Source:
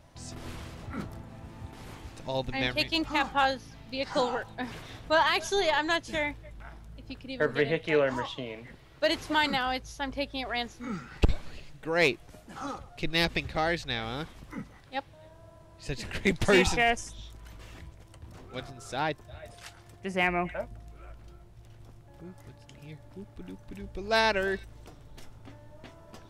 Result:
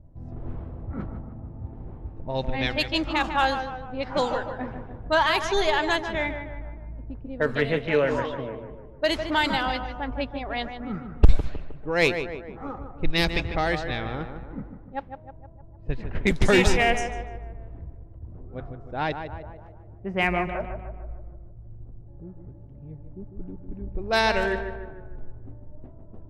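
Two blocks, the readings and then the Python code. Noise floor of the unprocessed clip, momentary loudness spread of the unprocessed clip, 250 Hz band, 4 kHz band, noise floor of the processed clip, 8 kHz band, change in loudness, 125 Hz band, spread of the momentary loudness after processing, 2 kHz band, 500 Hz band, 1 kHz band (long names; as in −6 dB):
−53 dBFS, 21 LU, +4.0 dB, +2.0 dB, −45 dBFS, +1.0 dB, +3.0 dB, +6.5 dB, 21 LU, +3.0 dB, +3.5 dB, +3.5 dB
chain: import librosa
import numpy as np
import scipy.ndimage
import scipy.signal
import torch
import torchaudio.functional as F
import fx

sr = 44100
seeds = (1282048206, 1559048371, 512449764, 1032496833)

p1 = fx.notch(x, sr, hz=4500.0, q=28.0)
p2 = fx.env_lowpass(p1, sr, base_hz=370.0, full_db=-22.5)
p3 = fx.low_shelf(p2, sr, hz=70.0, db=11.5)
p4 = p3 + fx.echo_tape(p3, sr, ms=152, feedback_pct=57, wet_db=-7.0, lp_hz=1900.0, drive_db=3.0, wow_cents=37, dry=0)
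y = p4 * librosa.db_to_amplitude(2.5)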